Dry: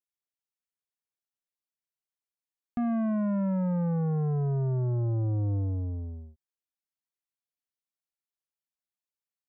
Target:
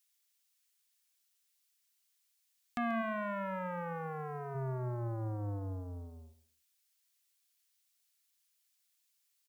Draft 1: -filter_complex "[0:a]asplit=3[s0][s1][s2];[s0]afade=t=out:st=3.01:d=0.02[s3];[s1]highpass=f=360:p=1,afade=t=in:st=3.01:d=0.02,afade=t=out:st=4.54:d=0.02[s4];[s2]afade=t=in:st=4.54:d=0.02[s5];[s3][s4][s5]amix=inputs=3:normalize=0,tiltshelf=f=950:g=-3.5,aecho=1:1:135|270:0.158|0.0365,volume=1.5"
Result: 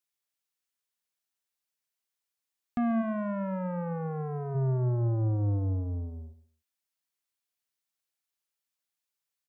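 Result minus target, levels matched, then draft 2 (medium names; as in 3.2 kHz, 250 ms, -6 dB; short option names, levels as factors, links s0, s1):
1 kHz band -7.5 dB
-filter_complex "[0:a]asplit=3[s0][s1][s2];[s0]afade=t=out:st=3.01:d=0.02[s3];[s1]highpass=f=360:p=1,afade=t=in:st=3.01:d=0.02,afade=t=out:st=4.54:d=0.02[s4];[s2]afade=t=in:st=4.54:d=0.02[s5];[s3][s4][s5]amix=inputs=3:normalize=0,tiltshelf=f=950:g=-15,aecho=1:1:135|270:0.158|0.0365,volume=1.5"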